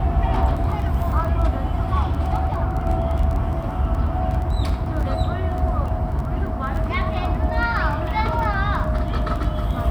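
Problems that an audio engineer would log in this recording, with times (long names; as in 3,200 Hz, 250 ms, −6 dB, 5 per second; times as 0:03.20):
surface crackle 13 per second −26 dBFS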